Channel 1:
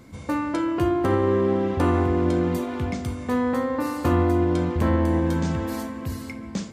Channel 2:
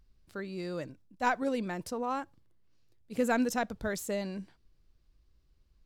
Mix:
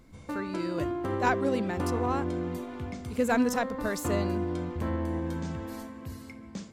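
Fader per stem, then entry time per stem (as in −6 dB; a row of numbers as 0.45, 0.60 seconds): −10.0, +2.0 decibels; 0.00, 0.00 seconds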